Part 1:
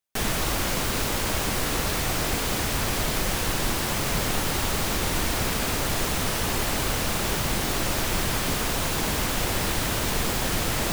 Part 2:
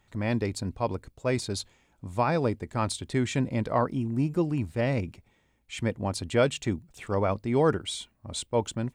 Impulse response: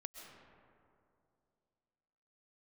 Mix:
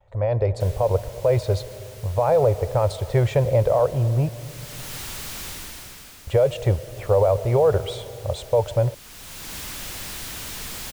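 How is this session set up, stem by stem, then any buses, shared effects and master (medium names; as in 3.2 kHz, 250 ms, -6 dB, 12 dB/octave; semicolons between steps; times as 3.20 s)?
-13.0 dB, 0.45 s, no send, tilt shelf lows -8 dB, about 1.1 kHz; hard clipper -24.5 dBFS, distortion -8 dB; auto duck -13 dB, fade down 0.80 s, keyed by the second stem
-2.0 dB, 0.00 s, muted 4.29–6.27 s, send -5 dB, gate with hold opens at -59 dBFS; FFT filter 120 Hz 0 dB, 260 Hz -24 dB, 530 Hz +15 dB, 1.5 kHz -3 dB, 3.4 kHz -6 dB, 7.5 kHz -13 dB; peak limiter -18 dBFS, peak gain reduction 15 dB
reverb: on, RT60 2.6 s, pre-delay 90 ms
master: bass shelf 310 Hz +9.5 dB; level rider gain up to 5 dB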